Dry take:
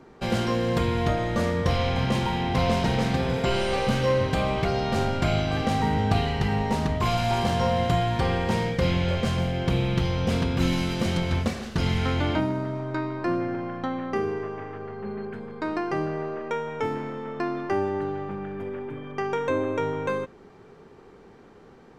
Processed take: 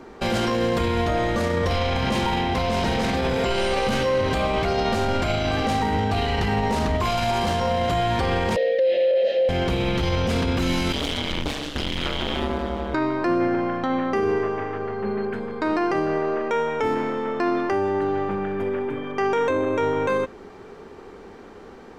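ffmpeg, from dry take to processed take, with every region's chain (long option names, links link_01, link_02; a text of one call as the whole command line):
ffmpeg -i in.wav -filter_complex "[0:a]asettb=1/sr,asplit=3[link_01][link_02][link_03];[link_01]atrim=end=8.564[link_04];[link_02]atrim=start=8.56:end=9.49,asetpts=PTS-STARTPTS,afade=type=in:duration=0.004:curve=qsin,afade=type=out:start_time=0.926:duration=0.004:curve=qsin,asplit=3[link_05][link_06][link_07];[link_05]bandpass=frequency=530:width_type=q:width=8,volume=0dB[link_08];[link_06]bandpass=frequency=1840:width_type=q:width=8,volume=-6dB[link_09];[link_07]bandpass=frequency=2480:width_type=q:width=8,volume=-9dB[link_10];[link_08][link_09][link_10]amix=inputs=3:normalize=0,highpass=370,equalizer=frequency=580:width_type=q:width=4:gain=10,equalizer=frequency=950:width_type=q:width=4:gain=-9,equalizer=frequency=1500:width_type=q:width=4:gain=-10,equalizer=frequency=2400:width_type=q:width=4:gain=-5,equalizer=frequency=4000:width_type=q:width=4:gain=8,lowpass=frequency=6000:width=0.5412,lowpass=frequency=6000:width=1.3066,acontrast=90[link_11];[link_03]atrim=start=9.486[link_12];[link_04][link_11]acrossfade=duration=0.004:curve1=hsin:curve2=qsin[link_13];[link_13][link_12]acrossfade=duration=0.004:curve1=qsin:curve2=hsin,asettb=1/sr,asplit=3[link_14][link_15][link_16];[link_14]atrim=end=10.924[link_17];[link_15]atrim=start=10.92:end=12.94,asetpts=PTS-STARTPTS,afade=type=in:duration=0.004:curve=qsin,afade=type=out:start_time=2.016:duration=0.004:curve=qsin,aeval=exprs='clip(val(0),-1,0.02)':channel_layout=same,equalizer=frequency=3300:width_type=o:width=0.5:gain=10,aeval=exprs='val(0)*sin(2*PI*71*n/s)':channel_layout=same[link_18];[link_16]atrim=start=12.936[link_19];[link_17][link_18]acrossfade=duration=0.004:curve1=hsin:curve2=qsin[link_20];[link_20][link_19]acrossfade=duration=0.004:curve1=qsin:curve2=hsin,equalizer=frequency=140:width=2.3:gain=-10.5,alimiter=limit=-23dB:level=0:latency=1:release=26,volume=8.5dB" out.wav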